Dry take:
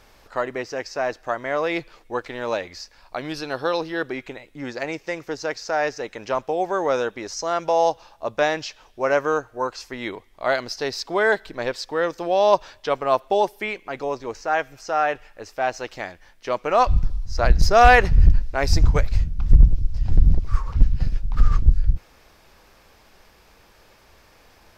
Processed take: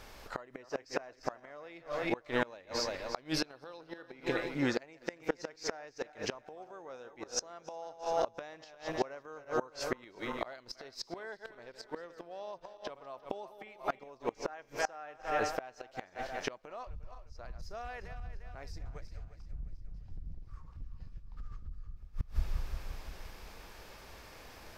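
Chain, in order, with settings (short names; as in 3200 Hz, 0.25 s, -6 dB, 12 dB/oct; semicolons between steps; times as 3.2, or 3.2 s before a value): regenerating reverse delay 0.175 s, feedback 65%, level -11.5 dB; limiter -9 dBFS, peak gain reduction 7.5 dB; flipped gate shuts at -19 dBFS, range -27 dB; gain +1 dB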